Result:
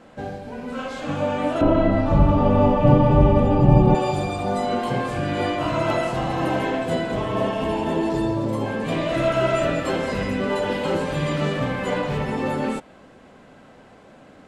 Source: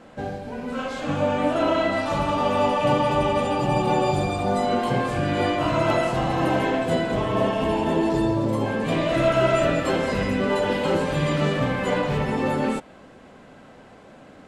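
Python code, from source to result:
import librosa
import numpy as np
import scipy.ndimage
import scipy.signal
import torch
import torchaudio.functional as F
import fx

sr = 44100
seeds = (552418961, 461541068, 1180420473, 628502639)

y = fx.tilt_eq(x, sr, slope=-4.5, at=(1.61, 3.95))
y = y * 10.0 ** (-1.0 / 20.0)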